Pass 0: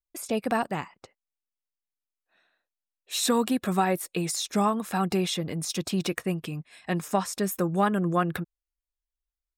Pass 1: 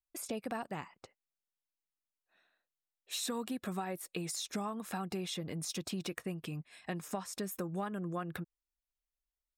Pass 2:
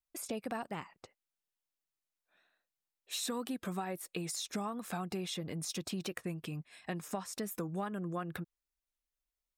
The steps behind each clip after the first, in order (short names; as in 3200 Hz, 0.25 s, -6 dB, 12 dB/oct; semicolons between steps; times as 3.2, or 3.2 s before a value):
compressor 4:1, threshold -31 dBFS, peak gain reduction 11 dB; gain -5 dB
record warp 45 rpm, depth 100 cents